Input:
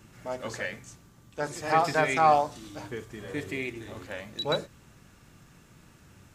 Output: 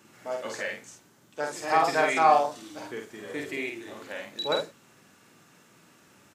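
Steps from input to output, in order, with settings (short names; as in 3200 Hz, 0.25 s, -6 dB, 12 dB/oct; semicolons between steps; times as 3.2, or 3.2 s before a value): HPF 250 Hz 12 dB/oct; doubler 49 ms -4 dB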